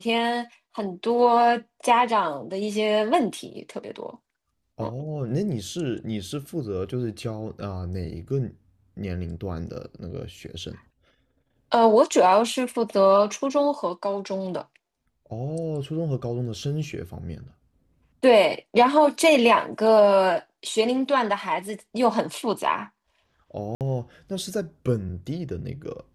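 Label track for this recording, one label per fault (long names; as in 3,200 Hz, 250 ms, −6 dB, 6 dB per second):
23.750000	23.810000	drop-out 58 ms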